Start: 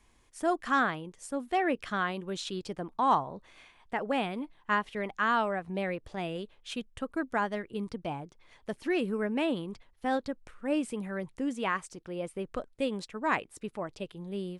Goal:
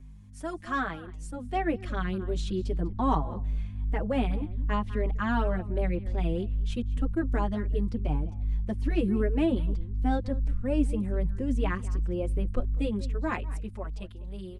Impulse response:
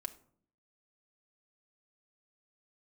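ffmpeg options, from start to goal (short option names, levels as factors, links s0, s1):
-filter_complex "[0:a]aeval=exprs='val(0)+0.00794*(sin(2*PI*50*n/s)+sin(2*PI*2*50*n/s)/2+sin(2*PI*3*50*n/s)/3+sin(2*PI*4*50*n/s)/4+sin(2*PI*5*50*n/s)/5)':c=same,acrossover=split=410|1400[s0][s1][s2];[s0]dynaudnorm=f=250:g=13:m=3.98[s3];[s3][s1][s2]amix=inputs=3:normalize=0,asplit=2[s4][s5];[s5]adelay=198.3,volume=0.126,highshelf=f=4000:g=-4.46[s6];[s4][s6]amix=inputs=2:normalize=0,asubboost=boost=3.5:cutoff=67,asplit=2[s7][s8];[s8]adelay=4.9,afreqshift=2.6[s9];[s7][s9]amix=inputs=2:normalize=1,volume=0.841"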